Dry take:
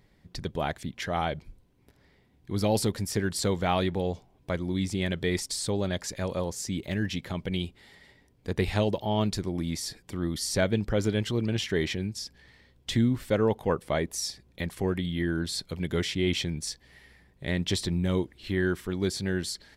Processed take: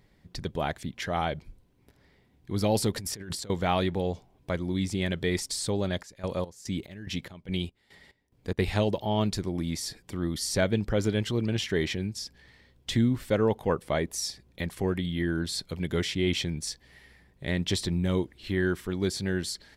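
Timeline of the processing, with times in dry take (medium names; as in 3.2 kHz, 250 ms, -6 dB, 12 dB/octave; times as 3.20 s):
2.96–3.50 s: compressor with a negative ratio -38 dBFS
5.82–8.59 s: square tremolo 2.4 Hz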